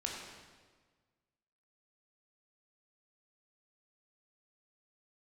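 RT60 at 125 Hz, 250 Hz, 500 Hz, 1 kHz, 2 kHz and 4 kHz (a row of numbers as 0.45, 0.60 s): 1.8, 1.6, 1.5, 1.4, 1.3, 1.2 s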